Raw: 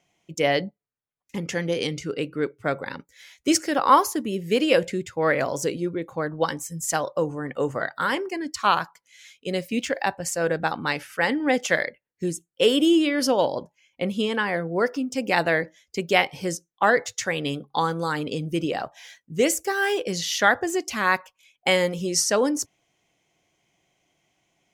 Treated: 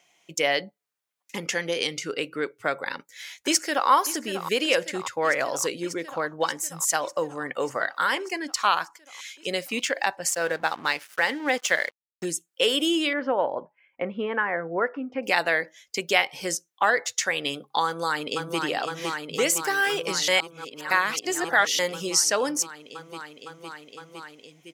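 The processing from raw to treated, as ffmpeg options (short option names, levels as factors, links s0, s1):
-filter_complex "[0:a]asplit=2[s0][s1];[s1]afade=t=in:st=2.86:d=0.01,afade=t=out:st=3.89:d=0.01,aecho=0:1:590|1180|1770|2360|2950|3540|4130|4720|5310|5900|6490:0.211349|0.158512|0.118884|0.0891628|0.0668721|0.0501541|0.0376156|0.0282117|0.0211588|0.0158691|0.0119018[s2];[s0][s2]amix=inputs=2:normalize=0,asettb=1/sr,asplit=3[s3][s4][s5];[s3]atrim=end=10.314[s6];[s4]atrim=start=10.31:end=12.25,asetpts=PTS-STARTPTS,afade=t=in:d=0.004:c=qsin,afade=t=out:st=1.936:d=0.004:c=qsin,aeval=exprs='sgn(val(0))*max(abs(val(0))-0.00708,0)':c=same[s7];[s5]atrim=start=12.246[s8];[s6][s7]acrossfade=d=0.004:c1=hsin:c2=qsin[s9];[s9][s8]acrossfade=d=0.004:c1=qsin:c2=hsin,asettb=1/sr,asplit=3[s10][s11][s12];[s10]atrim=end=13.134[s13];[s11]atrim=start=13.13:end=15.23,asetpts=PTS-STARTPTS,afade=t=in:d=0.004:c=qsin,afade=t=out:st=2.096:d=0.004:c=qsin,lowpass=f=1900:w=0.5412,lowpass=f=1900:w=1.3066[s14];[s12]atrim=start=15.226[s15];[s13][s14]acrossfade=d=0.004:c1=hsin:c2=qsin[s16];[s16][s15]acrossfade=d=0.004:c1=qsin:c2=hsin,asplit=2[s17][s18];[s18]afade=t=in:st=17.85:d=0.01,afade=t=out:st=18.62:d=0.01,aecho=0:1:510|1020|1530|2040|2550|3060|3570|4080|4590|5100|5610|6120:0.530884|0.451252|0.383564|0.326029|0.277125|0.235556|0.200223|0.170189|0.144661|0.122962|0.104518|0.0888399[s19];[s17][s19]amix=inputs=2:normalize=0,asplit=3[s20][s21][s22];[s20]atrim=end=20.282[s23];[s21]atrim=start=20.278:end=21.792,asetpts=PTS-STARTPTS,areverse[s24];[s22]atrim=start=21.788[s25];[s23][s24]acrossfade=d=0.004:c1=hsin:c2=hsin[s26];[s26][s25]acrossfade=d=0.004:c1=hsin:c2=hsin,highpass=f=940:p=1,acompressor=threshold=0.0112:ratio=1.5,volume=2.66"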